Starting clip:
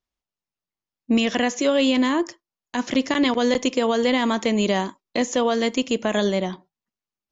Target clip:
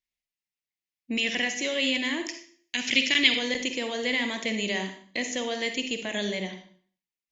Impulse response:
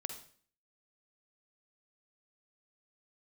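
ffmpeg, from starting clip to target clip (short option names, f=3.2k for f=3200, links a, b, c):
-filter_complex "[0:a]asetnsamples=n=441:p=0,asendcmd='2.23 highshelf g 13.5;3.39 highshelf g 6.5',highshelf=f=1.6k:t=q:w=3:g=7.5[a];[1:a]atrim=start_sample=2205[b];[a][b]afir=irnorm=-1:irlink=0,volume=-9dB"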